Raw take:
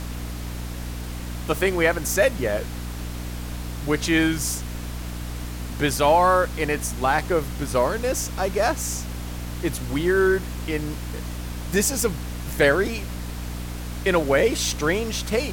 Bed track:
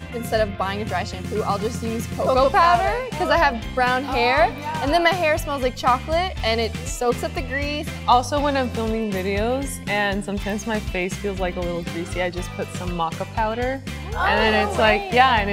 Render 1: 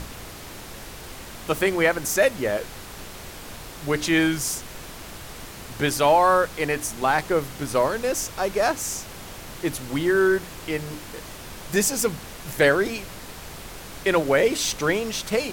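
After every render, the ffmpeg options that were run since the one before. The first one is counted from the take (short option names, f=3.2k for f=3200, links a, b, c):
-af "bandreject=f=60:t=h:w=6,bandreject=f=120:t=h:w=6,bandreject=f=180:t=h:w=6,bandreject=f=240:t=h:w=6,bandreject=f=300:t=h:w=6"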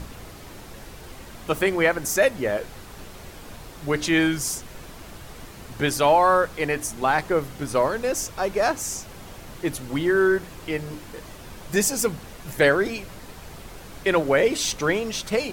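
-af "afftdn=nr=6:nf=-40"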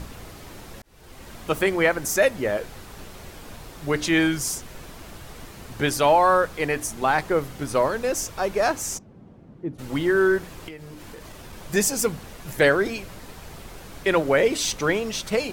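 -filter_complex "[0:a]asplit=3[a][b][c];[a]afade=t=out:st=8.97:d=0.02[d];[b]bandpass=f=200:t=q:w=1.2,afade=t=in:st=8.97:d=0.02,afade=t=out:st=9.78:d=0.02[e];[c]afade=t=in:st=9.78:d=0.02[f];[d][e][f]amix=inputs=3:normalize=0,asettb=1/sr,asplit=3[g][h][i];[g]atrim=end=10.684[j];[h]atrim=start=10.68:end=11.53,asetpts=PTS-STARTPTS,afade=t=in:d=0.004:c=qsin,afade=t=out:st=0.846:d=0.004:c=qsin,acompressor=threshold=-36dB:ratio=6:attack=3.2:release=140:knee=1:detection=peak[k];[i]atrim=start=11.526[l];[j][k]acrossfade=d=0.004:c1=hsin:c2=qsin[m];[m][l]acrossfade=d=0.004:c1=qsin:c2=hsin,asplit=2[n][o];[n]atrim=end=0.82,asetpts=PTS-STARTPTS,afade=t=out:st=0.816:d=0.004:c=hsin[p];[o]atrim=start=0.82,asetpts=PTS-STARTPTS,afade=t=in:d=0.49[q];[p][q]concat=n=2:v=0:a=1"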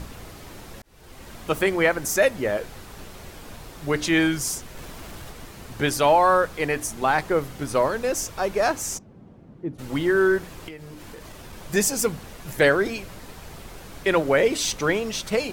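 -filter_complex "[0:a]asettb=1/sr,asplit=3[a][b][c];[a]atrim=end=4.774[d];[b]atrim=start=4.77:end=5.31,asetpts=PTS-STARTPTS,afade=t=in:d=0.004:c=qsin,afade=t=out:st=0.536:d=0.004:c=qsin,aeval=exprs='val(0)+0.5*0.00631*sgn(val(0))':c=same[e];[c]atrim=start=5.306[f];[d][e]acrossfade=d=0.004:c1=hsin:c2=qsin[g];[g][f]acrossfade=d=0.004:c1=qsin:c2=hsin"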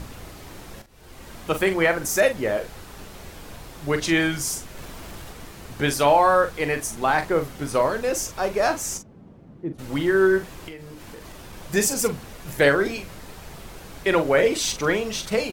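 -filter_complex "[0:a]asplit=2[a][b];[b]adelay=42,volume=-9.5dB[c];[a][c]amix=inputs=2:normalize=0"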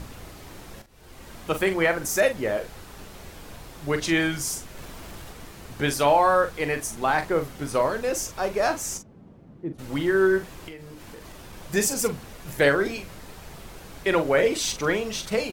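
-af "volume=-2dB"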